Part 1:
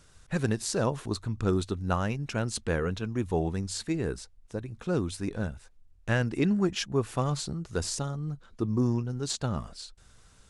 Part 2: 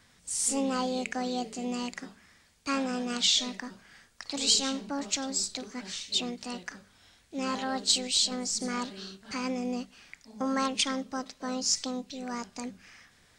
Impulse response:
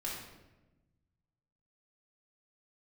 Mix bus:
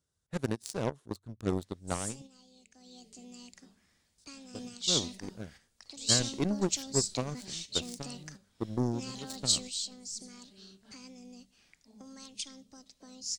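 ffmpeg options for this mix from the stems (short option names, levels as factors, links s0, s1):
-filter_complex "[0:a]highpass=73,equalizer=f=2500:w=6.1:g=-6,aeval=exprs='0.266*(cos(1*acos(clip(val(0)/0.266,-1,1)))-cos(1*PI/2))+0.00211*(cos(3*acos(clip(val(0)/0.266,-1,1)))-cos(3*PI/2))+0.0335*(cos(7*acos(clip(val(0)/0.266,-1,1)))-cos(7*PI/2))':c=same,volume=0.841,asplit=3[s0][s1][s2];[s0]atrim=end=2.22,asetpts=PTS-STARTPTS,afade=t=out:st=2.216:d=0.004:c=hsin[s3];[s1]atrim=start=2.22:end=4.18,asetpts=PTS-STARTPTS,volume=0[s4];[s2]atrim=start=4.18,asetpts=PTS-STARTPTS,afade=t=in:d=0.004:c=hsin[s5];[s3][s4][s5]concat=n=3:v=0:a=1,asplit=2[s6][s7];[1:a]acrossover=split=150|3000[s8][s9][s10];[s9]acompressor=threshold=0.00708:ratio=6[s11];[s8][s11][s10]amix=inputs=3:normalize=0,adelay=1600,afade=t=in:st=2.69:d=0.43:silence=0.298538[s12];[s7]apad=whole_len=660782[s13];[s12][s13]sidechaingate=range=0.398:threshold=0.00224:ratio=16:detection=peak[s14];[s6][s14]amix=inputs=2:normalize=0,equalizer=f=1500:t=o:w=2:g=-6.5"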